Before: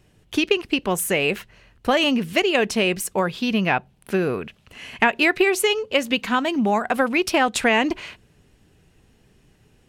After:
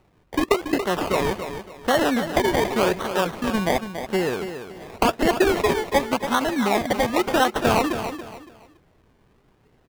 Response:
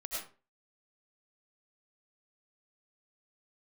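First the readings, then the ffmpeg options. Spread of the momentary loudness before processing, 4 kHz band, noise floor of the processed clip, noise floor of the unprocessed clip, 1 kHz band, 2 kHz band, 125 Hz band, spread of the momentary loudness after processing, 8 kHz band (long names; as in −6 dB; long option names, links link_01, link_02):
10 LU, −4.5 dB, −61 dBFS, −59 dBFS, +1.5 dB, −4.5 dB, +1.0 dB, 10 LU, −4.0 dB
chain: -af "acrusher=samples=26:mix=1:aa=0.000001:lfo=1:lforange=15.6:lforate=0.9,bass=frequency=250:gain=-5,treble=frequency=4000:gain=-6,aecho=1:1:282|564|846:0.335|0.0971|0.0282"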